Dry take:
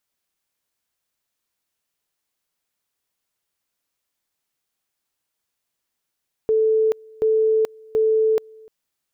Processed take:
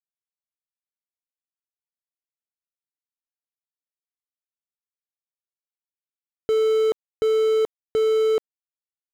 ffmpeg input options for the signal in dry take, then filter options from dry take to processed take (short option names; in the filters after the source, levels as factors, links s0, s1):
-f lavfi -i "aevalsrc='pow(10,(-14.5-27*gte(mod(t,0.73),0.43))/20)*sin(2*PI*439*t)':d=2.19:s=44100"
-af "acrusher=bits=3:mix=0:aa=0.000001,lowpass=f=1200:p=1"